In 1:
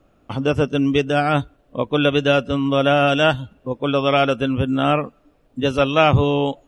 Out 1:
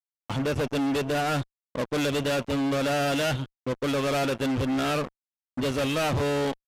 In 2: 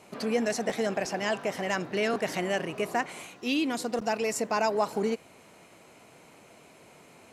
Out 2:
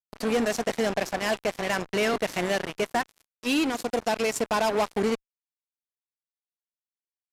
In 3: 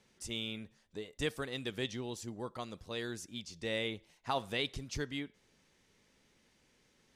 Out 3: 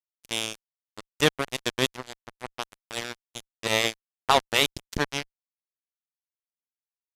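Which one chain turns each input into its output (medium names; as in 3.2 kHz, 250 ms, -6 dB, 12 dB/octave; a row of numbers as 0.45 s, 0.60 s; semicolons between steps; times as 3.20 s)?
fuzz box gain 26 dB, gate -34 dBFS; resampled via 32 kHz; normalise loudness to -27 LUFS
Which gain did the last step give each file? -10.5 dB, -5.5 dB, +6.0 dB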